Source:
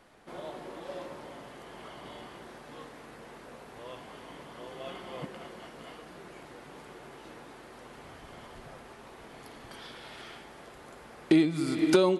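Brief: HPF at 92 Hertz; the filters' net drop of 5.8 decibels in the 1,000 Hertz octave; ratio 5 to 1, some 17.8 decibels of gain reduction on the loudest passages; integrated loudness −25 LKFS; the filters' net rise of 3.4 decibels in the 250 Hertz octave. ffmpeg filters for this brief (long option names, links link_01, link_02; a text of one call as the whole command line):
ffmpeg -i in.wav -af "highpass=92,equalizer=frequency=250:width_type=o:gain=6,equalizer=frequency=1000:width_type=o:gain=-8,acompressor=threshold=-35dB:ratio=5,volume=19.5dB" out.wav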